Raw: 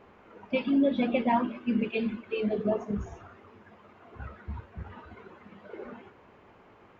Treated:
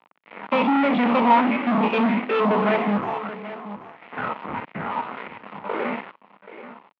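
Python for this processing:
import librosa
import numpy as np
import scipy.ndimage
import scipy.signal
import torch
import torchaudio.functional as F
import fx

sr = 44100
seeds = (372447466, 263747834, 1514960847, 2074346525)

y = fx.spec_steps(x, sr, hold_ms=50)
y = fx.fuzz(y, sr, gain_db=41.0, gate_db=-49.0)
y = fx.cabinet(y, sr, low_hz=180.0, low_slope=24, high_hz=2800.0, hz=(370.0, 910.0, 1600.0), db=(-7, 3, -7))
y = y + 10.0 ** (-14.0 / 20.0) * np.pad(y, (int(781 * sr / 1000.0), 0))[:len(y)]
y = fx.bell_lfo(y, sr, hz=1.6, low_hz=930.0, high_hz=2200.0, db=8)
y = y * 10.0 ** (-4.5 / 20.0)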